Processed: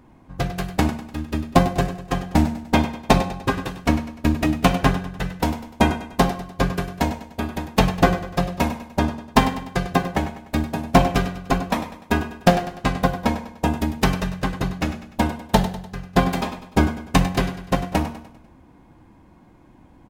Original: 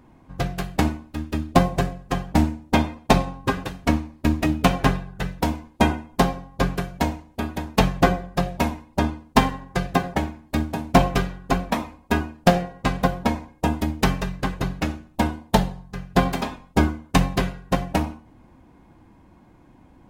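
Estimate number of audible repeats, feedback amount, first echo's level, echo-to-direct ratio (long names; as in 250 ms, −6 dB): 4, 46%, −12.5 dB, −11.5 dB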